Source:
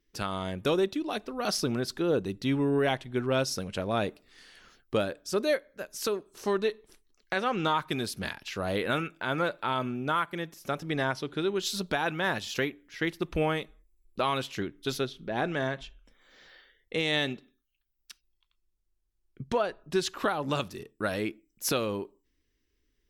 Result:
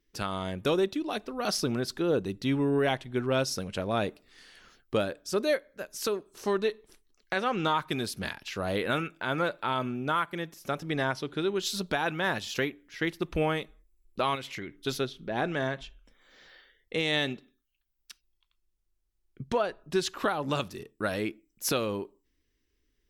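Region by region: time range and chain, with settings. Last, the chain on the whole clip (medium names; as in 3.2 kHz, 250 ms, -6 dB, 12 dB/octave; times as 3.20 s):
14.35–14.76 s: peaking EQ 2.1 kHz +13 dB 0.28 oct + compression 4:1, threshold -35 dBFS
whole clip: none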